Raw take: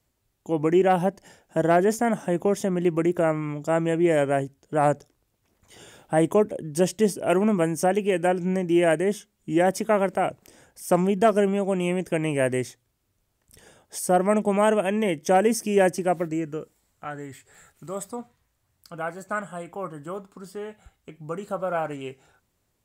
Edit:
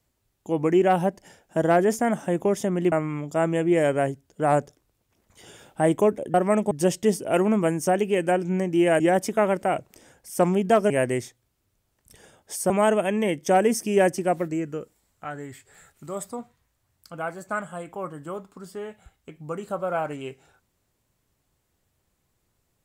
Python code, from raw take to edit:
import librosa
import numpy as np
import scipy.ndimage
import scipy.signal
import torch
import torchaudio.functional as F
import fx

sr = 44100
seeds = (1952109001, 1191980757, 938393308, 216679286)

y = fx.edit(x, sr, fx.cut(start_s=2.92, length_s=0.33),
    fx.cut(start_s=8.96, length_s=0.56),
    fx.cut(start_s=11.42, length_s=0.91),
    fx.move(start_s=14.13, length_s=0.37, to_s=6.67), tone=tone)